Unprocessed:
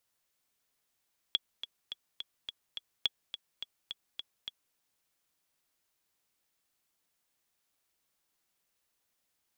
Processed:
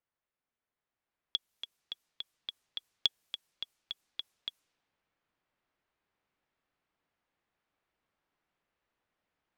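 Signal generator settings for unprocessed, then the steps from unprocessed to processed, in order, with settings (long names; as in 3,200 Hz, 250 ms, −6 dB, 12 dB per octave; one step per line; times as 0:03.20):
click track 211 BPM, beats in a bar 6, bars 2, 3,360 Hz, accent 11.5 dB −14 dBFS
low-pass that shuts in the quiet parts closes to 2,000 Hz, open at −45.5 dBFS
speech leveller 2 s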